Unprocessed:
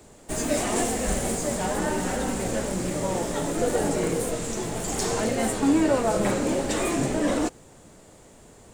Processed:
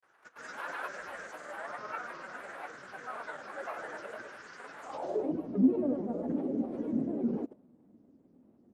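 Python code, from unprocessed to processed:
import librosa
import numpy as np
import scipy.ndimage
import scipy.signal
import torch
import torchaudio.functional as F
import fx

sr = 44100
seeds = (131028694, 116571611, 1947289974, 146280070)

y = fx.granulator(x, sr, seeds[0], grain_ms=100.0, per_s=20.0, spray_ms=100.0, spread_st=7)
y = fx.filter_sweep_bandpass(y, sr, from_hz=1500.0, to_hz=250.0, start_s=4.81, end_s=5.34, q=4.0)
y = fx.dynamic_eq(y, sr, hz=570.0, q=2.3, threshold_db=-57.0, ratio=4.0, max_db=6)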